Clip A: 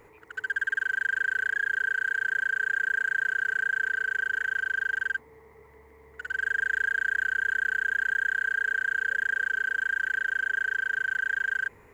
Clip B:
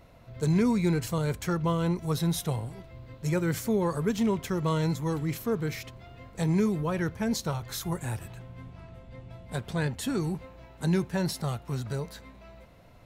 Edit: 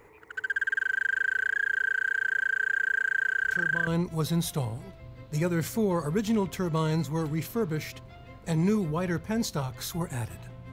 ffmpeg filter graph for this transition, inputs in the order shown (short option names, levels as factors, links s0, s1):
-filter_complex "[1:a]asplit=2[s0][s1];[0:a]apad=whole_dur=10.72,atrim=end=10.72,atrim=end=3.872[s2];[s1]atrim=start=1.778:end=8.63[s3];[s0]atrim=start=1.35:end=1.78,asetpts=PTS-STARTPTS,volume=0.299,afade=t=in:d=0.004:c=hsin,afade=t=out:st=0.426:d=0.004:c=hsin,adelay=3440[s4];[s2][s3]acrossfade=d=0.004:c1=hsin:c2=hsin[s5];[s5][s4]amix=inputs=2:normalize=0"